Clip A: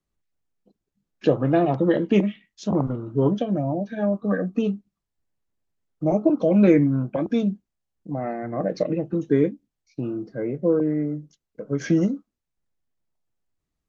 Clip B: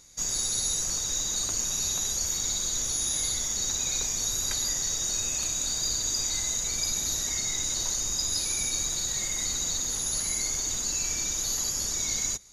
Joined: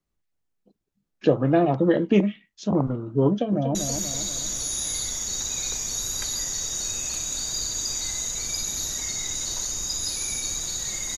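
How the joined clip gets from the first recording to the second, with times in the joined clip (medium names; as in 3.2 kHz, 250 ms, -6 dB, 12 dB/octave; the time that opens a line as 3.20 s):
clip A
3.28–3.75 s: echo throw 240 ms, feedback 50%, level -7 dB
3.75 s: go over to clip B from 2.04 s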